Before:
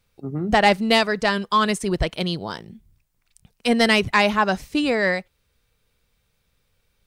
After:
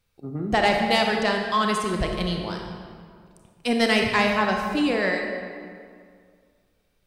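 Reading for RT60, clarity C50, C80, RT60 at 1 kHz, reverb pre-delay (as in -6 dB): 2.1 s, 2.5 dB, 4.0 dB, 2.1 s, 27 ms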